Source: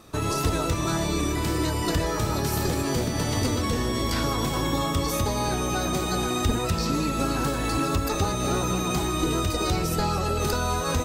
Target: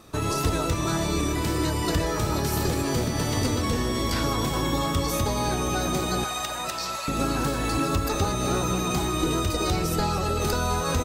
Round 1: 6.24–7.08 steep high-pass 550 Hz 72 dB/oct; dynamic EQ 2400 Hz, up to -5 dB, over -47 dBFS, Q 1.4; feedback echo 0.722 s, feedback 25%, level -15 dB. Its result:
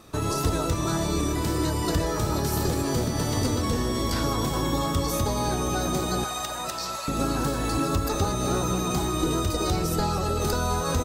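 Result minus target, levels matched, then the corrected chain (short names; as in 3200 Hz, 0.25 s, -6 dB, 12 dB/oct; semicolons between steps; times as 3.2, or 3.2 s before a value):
2000 Hz band -3.0 dB
6.24–7.08 steep high-pass 550 Hz 72 dB/oct; feedback echo 0.722 s, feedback 25%, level -15 dB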